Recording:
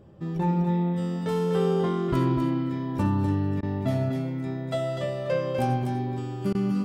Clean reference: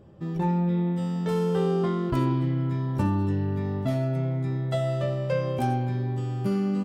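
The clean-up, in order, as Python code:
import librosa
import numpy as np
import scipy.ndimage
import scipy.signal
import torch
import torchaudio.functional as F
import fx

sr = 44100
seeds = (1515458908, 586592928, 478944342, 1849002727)

y = fx.fix_declip(x, sr, threshold_db=-15.0)
y = fx.fix_interpolate(y, sr, at_s=(3.61, 6.53), length_ms=17.0)
y = fx.fix_echo_inverse(y, sr, delay_ms=248, level_db=-6.0)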